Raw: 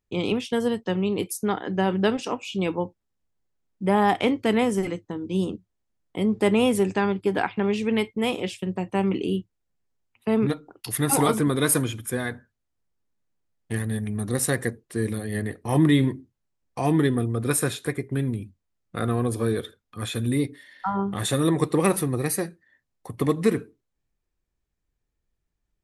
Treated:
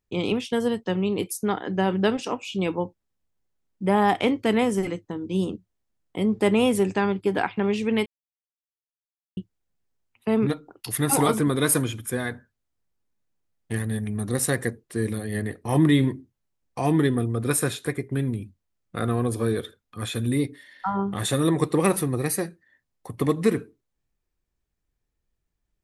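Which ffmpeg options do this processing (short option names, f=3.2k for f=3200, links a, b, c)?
-filter_complex "[0:a]asplit=3[a][b][c];[a]atrim=end=8.06,asetpts=PTS-STARTPTS,afade=t=out:st=8.056:d=0.004:c=hsin[d];[b]atrim=start=8.06:end=9.37,asetpts=PTS-STARTPTS,volume=0[e];[c]atrim=start=9.37,asetpts=PTS-STARTPTS,afade=t=in:d=0.004:c=hsin[f];[d][e][f]concat=n=3:v=0:a=1"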